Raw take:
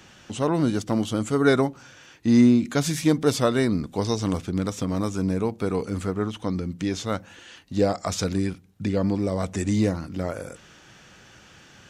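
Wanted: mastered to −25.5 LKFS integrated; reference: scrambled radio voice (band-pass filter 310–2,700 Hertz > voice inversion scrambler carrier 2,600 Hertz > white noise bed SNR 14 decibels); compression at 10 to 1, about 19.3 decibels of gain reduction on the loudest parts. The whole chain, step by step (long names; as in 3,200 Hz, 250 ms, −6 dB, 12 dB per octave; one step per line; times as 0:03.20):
downward compressor 10 to 1, threshold −33 dBFS
band-pass filter 310–2,700 Hz
voice inversion scrambler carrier 2,600 Hz
white noise bed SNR 14 dB
level +13.5 dB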